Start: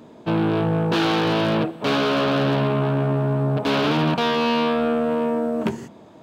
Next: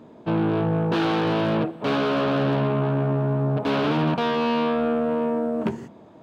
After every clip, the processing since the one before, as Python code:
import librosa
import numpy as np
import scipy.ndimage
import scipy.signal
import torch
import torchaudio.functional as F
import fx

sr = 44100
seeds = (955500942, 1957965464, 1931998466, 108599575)

y = fx.high_shelf(x, sr, hz=3100.0, db=-9.5)
y = F.gain(torch.from_numpy(y), -1.5).numpy()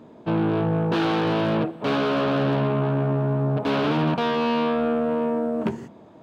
y = x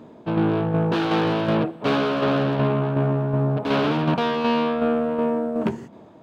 y = fx.tremolo_shape(x, sr, shape='saw_down', hz=2.7, depth_pct=45)
y = F.gain(torch.from_numpy(y), 3.0).numpy()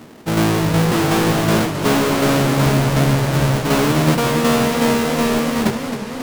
y = fx.halfwave_hold(x, sr)
y = fx.echo_warbled(y, sr, ms=269, feedback_pct=74, rate_hz=2.8, cents=201, wet_db=-9.5)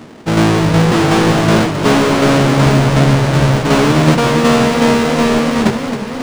y = np.interp(np.arange(len(x)), np.arange(len(x))[::3], x[::3])
y = F.gain(torch.from_numpy(y), 5.0).numpy()